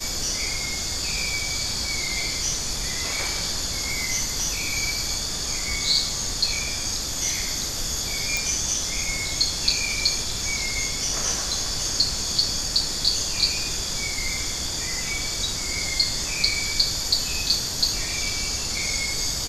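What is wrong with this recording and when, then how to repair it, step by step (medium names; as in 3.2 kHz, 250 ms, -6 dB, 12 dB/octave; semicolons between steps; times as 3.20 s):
8.37 s: pop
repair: de-click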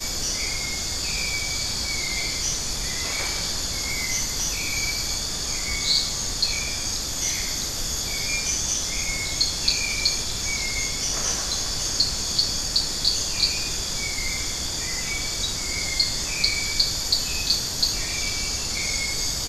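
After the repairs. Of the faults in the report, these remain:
nothing left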